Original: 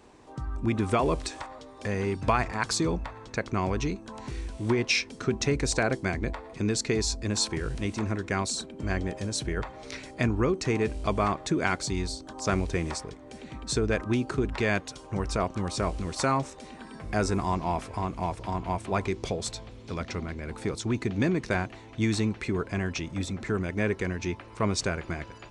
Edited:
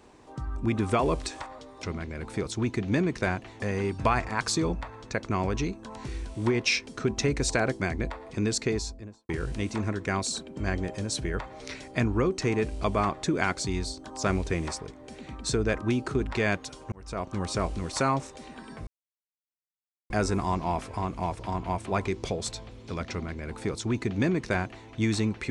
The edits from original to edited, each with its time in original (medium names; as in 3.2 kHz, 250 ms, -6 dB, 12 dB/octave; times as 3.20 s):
6.80–7.52 s: studio fade out
15.15–15.64 s: fade in
17.10 s: insert silence 1.23 s
20.11–21.88 s: copy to 1.83 s